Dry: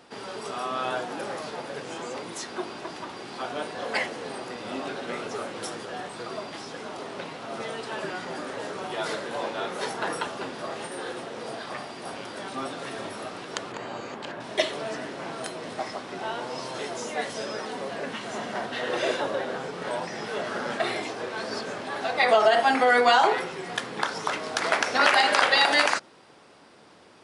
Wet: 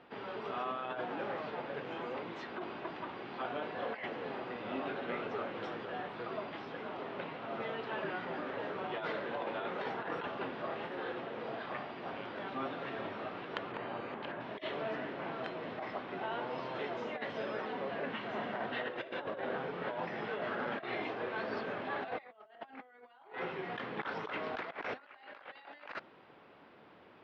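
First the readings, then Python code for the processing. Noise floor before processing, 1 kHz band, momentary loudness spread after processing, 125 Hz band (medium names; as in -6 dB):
-41 dBFS, -12.5 dB, 8 LU, -5.5 dB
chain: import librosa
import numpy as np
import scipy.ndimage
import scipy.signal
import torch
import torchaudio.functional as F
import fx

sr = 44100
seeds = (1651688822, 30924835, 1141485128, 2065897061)

y = scipy.signal.sosfilt(scipy.signal.butter(4, 3100.0, 'lowpass', fs=sr, output='sos'), x)
y = fx.over_compress(y, sr, threshold_db=-31.0, ratio=-0.5)
y = y * 10.0 ** (-8.0 / 20.0)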